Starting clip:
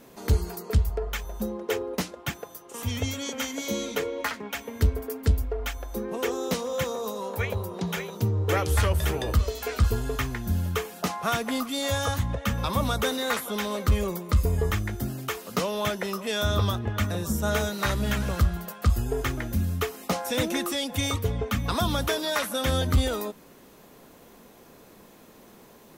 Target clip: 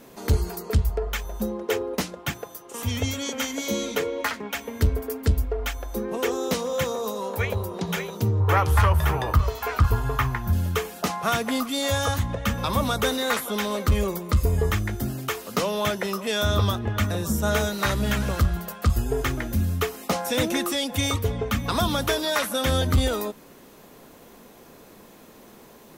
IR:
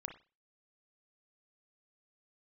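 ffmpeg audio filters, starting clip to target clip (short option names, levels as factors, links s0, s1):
-filter_complex "[0:a]asettb=1/sr,asplit=3[s0][s1][s2];[s0]atrim=end=8.404[s3];[s1]atrim=start=8.4:end=10.53,asetpts=PTS-STARTPTS,afade=t=in:d=0.004:c=qsin,afade=t=out:st=2.126:d=0.004:c=qsin,equalizer=f=125:t=o:w=1:g=7,equalizer=f=250:t=o:w=1:g=-6,equalizer=f=500:t=o:w=1:g=-4,equalizer=f=1000:t=o:w=1:g=10,equalizer=f=4000:t=o:w=1:g=-4,equalizer=f=8000:t=o:w=1:g=-7[s4];[s2]atrim=start=10.526[s5];[s3][s4]acrossfade=d=0.004:c1=hsin:c2=qsin[s6];[s6][s5]acrossfade=d=0.004:c1=qsin:c2=hsin,asoftclip=type=tanh:threshold=0.299,bandreject=f=60:t=h:w=6,bandreject=f=120:t=h:w=6,bandreject=f=180:t=h:w=6,volume=1.41"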